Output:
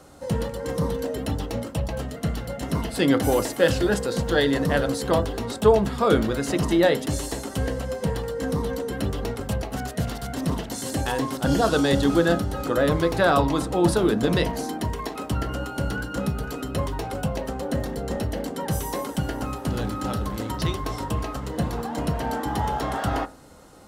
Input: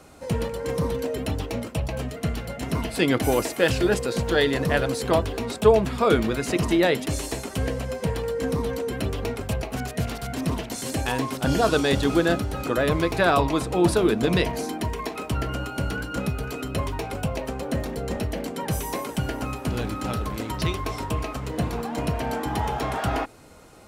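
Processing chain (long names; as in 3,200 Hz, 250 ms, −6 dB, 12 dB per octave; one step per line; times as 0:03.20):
parametric band 2,400 Hz −9 dB 0.26 octaves
convolution reverb RT60 0.35 s, pre-delay 3 ms, DRR 10.5 dB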